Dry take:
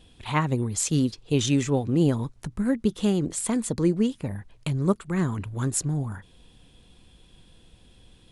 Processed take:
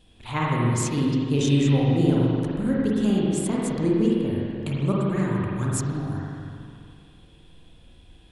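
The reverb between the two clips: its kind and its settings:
spring reverb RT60 2.4 s, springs 42/51 ms, chirp 40 ms, DRR −5 dB
level −4 dB

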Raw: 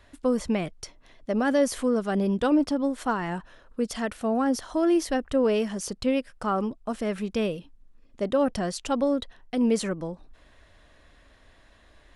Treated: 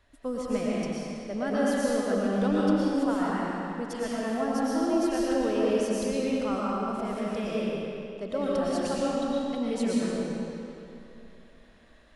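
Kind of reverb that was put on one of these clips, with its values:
comb and all-pass reverb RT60 2.8 s, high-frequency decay 0.85×, pre-delay 75 ms, DRR −7 dB
level −9 dB

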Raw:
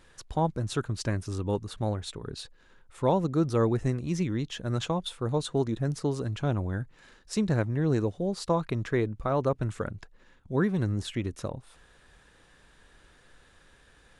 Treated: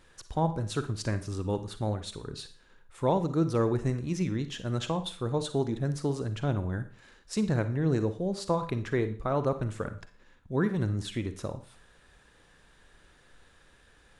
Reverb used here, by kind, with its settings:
four-comb reverb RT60 0.43 s, DRR 10.5 dB
level −1.5 dB

